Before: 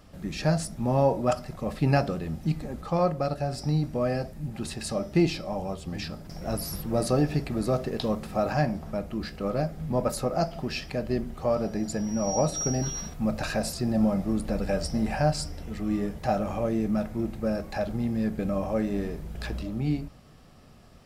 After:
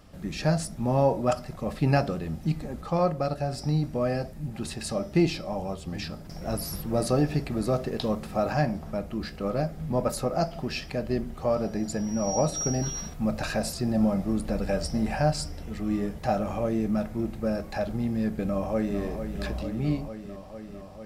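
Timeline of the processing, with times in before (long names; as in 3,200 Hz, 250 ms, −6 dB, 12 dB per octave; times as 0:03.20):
0:18.43–0:19.01: delay throw 450 ms, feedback 80%, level −8.5 dB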